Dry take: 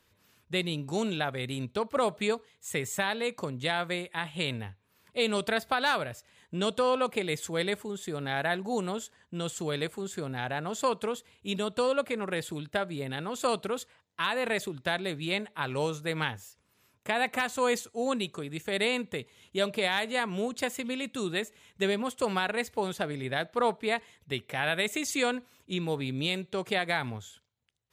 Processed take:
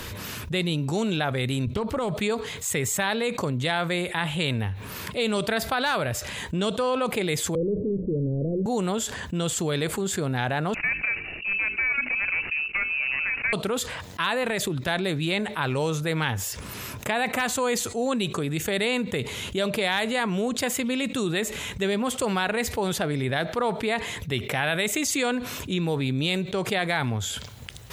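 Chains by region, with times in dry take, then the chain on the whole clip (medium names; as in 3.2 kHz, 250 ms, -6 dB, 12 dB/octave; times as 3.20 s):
1.67–2.15 s: compression, threshold -32 dBFS + bass shelf 190 Hz +11.5 dB + loudspeaker Doppler distortion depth 0.22 ms
7.55–8.66 s: jump at every zero crossing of -31 dBFS + steep low-pass 530 Hz 72 dB/octave + hum notches 60/120/180/240/300 Hz
10.74–13.53 s: median filter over 25 samples + frequency inversion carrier 2.8 kHz + hum notches 50/100/150/200/250/300/350/400/450 Hz
14.43–14.88 s: compression, threshold -30 dBFS + tape noise reduction on one side only encoder only
whole clip: bass shelf 130 Hz +6 dB; level flattener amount 70%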